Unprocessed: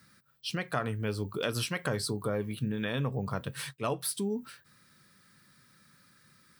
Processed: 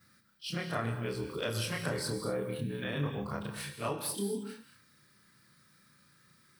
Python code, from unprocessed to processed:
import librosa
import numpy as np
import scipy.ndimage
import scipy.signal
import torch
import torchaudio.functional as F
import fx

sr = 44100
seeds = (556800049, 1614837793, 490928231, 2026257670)

y = fx.frame_reverse(x, sr, frame_ms=70.0)
y = fx.rev_gated(y, sr, seeds[0], gate_ms=260, shape='flat', drr_db=6.5)